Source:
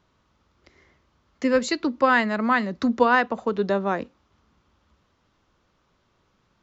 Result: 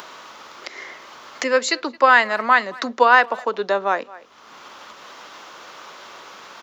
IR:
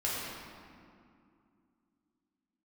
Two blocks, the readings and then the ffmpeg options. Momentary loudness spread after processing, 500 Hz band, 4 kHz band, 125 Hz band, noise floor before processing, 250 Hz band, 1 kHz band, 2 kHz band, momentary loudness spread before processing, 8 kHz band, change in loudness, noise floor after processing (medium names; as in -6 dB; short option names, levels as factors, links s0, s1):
22 LU, +2.5 dB, +7.5 dB, under -10 dB, -68 dBFS, -7.5 dB, +6.5 dB, +7.0 dB, 9 LU, no reading, +4.5 dB, -46 dBFS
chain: -filter_complex "[0:a]asplit=2[s0][s1];[s1]adelay=220,highpass=300,lowpass=3400,asoftclip=type=hard:threshold=0.2,volume=0.0708[s2];[s0][s2]amix=inputs=2:normalize=0,acompressor=mode=upward:threshold=0.0631:ratio=2.5,aeval=exprs='val(0)+0.00282*(sin(2*PI*50*n/s)+sin(2*PI*2*50*n/s)/2+sin(2*PI*3*50*n/s)/3+sin(2*PI*4*50*n/s)/4+sin(2*PI*5*50*n/s)/5)':c=same,highpass=590,volume=2.24"